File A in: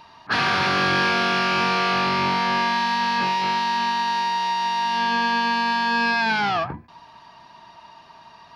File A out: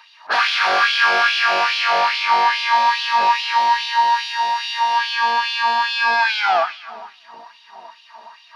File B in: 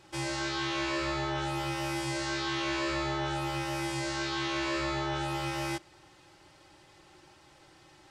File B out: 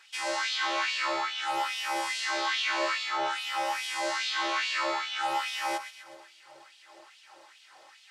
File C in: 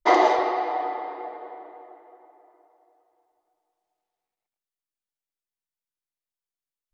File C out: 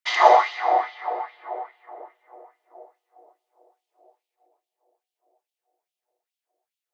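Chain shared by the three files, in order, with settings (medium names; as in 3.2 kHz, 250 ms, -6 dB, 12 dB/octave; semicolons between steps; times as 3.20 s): two-band feedback delay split 540 Hz, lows 638 ms, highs 127 ms, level -10.5 dB; LFO high-pass sine 2.4 Hz 560–3100 Hz; trim +1.5 dB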